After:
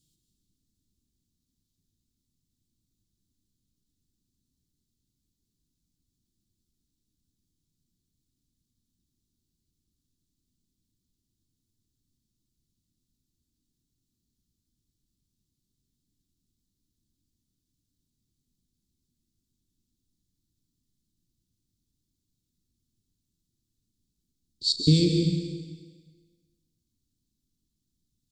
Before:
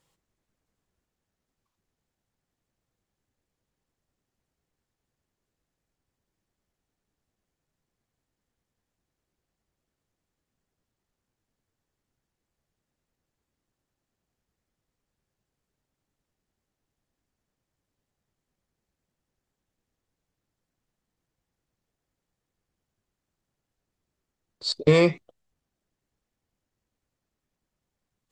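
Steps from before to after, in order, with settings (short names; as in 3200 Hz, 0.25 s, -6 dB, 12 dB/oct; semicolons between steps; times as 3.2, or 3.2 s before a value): Chebyshev band-stop 290–3800 Hz, order 3; doubler 38 ms -14 dB; plate-style reverb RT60 1.5 s, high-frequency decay 0.95×, pre-delay 0.11 s, DRR 3 dB; gain +3.5 dB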